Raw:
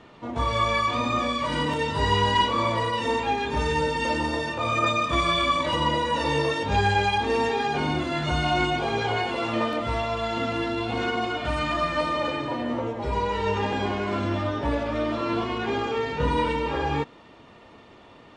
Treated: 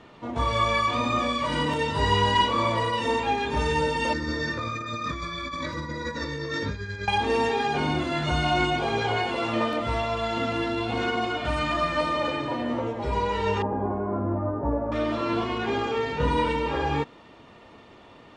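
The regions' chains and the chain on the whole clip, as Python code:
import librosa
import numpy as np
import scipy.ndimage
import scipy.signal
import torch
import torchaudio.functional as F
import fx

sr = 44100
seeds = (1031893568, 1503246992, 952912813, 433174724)

y = fx.chain(x, sr, fx.over_compress(threshold_db=-28.0, ratio=-1.0),
    fx.fixed_phaser(hz=2900.0, stages=6), at=(4.13, 7.08))
y = fx.chain(y, sr, fx.cvsd(bps=64000),
    fx.lowpass(hz=1100.0, slope=24), at=(13.62, 14.92))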